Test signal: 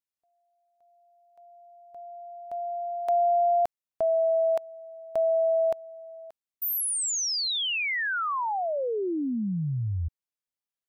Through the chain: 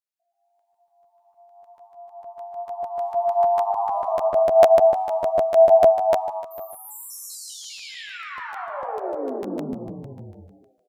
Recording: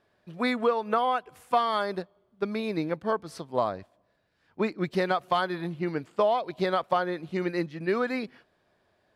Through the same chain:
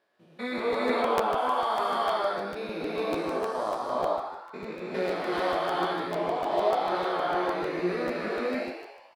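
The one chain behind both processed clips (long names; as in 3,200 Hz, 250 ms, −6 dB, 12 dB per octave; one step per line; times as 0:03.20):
spectrum averaged block by block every 200 ms
high-pass filter 290 Hz 12 dB per octave
echo with shifted repeats 121 ms, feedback 50%, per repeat +100 Hz, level −6.5 dB
reverb whose tail is shaped and stops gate 460 ms rising, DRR −4.5 dB
chorus effect 1 Hz, delay 16 ms, depth 4.5 ms
regular buffer underruns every 0.15 s, samples 512, repeat, from 0:00.57
level +1 dB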